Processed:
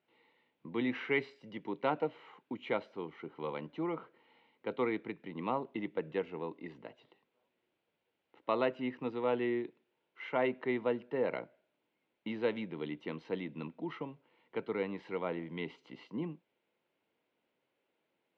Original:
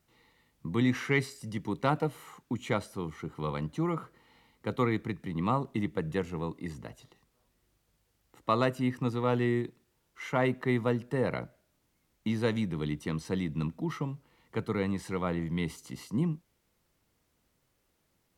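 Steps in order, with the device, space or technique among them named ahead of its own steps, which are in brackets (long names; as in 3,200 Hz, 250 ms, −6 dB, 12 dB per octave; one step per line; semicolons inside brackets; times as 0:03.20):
phone earpiece (loudspeaker in its box 360–3,000 Hz, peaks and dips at 740 Hz −3 dB, 1,200 Hz −9 dB, 1,800 Hz −6 dB)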